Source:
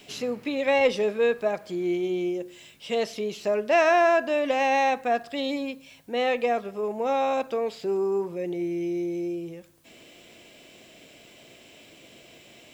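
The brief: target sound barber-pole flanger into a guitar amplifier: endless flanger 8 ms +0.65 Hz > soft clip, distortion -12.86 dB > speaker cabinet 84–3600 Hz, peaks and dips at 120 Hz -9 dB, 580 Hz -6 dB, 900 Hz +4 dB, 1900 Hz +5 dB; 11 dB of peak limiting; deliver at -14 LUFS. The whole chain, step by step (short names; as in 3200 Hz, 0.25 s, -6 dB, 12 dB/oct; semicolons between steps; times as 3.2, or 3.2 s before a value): limiter -21 dBFS; endless flanger 8 ms +0.65 Hz; soft clip -29.5 dBFS; speaker cabinet 84–3600 Hz, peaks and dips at 120 Hz -9 dB, 580 Hz -6 dB, 900 Hz +4 dB, 1900 Hz +5 dB; gain +22.5 dB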